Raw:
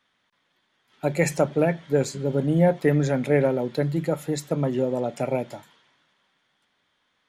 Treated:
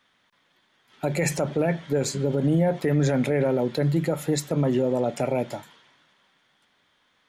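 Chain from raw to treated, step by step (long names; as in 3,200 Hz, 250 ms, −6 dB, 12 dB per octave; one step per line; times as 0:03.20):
brickwall limiter −18.5 dBFS, peak gain reduction 10.5 dB
level +4.5 dB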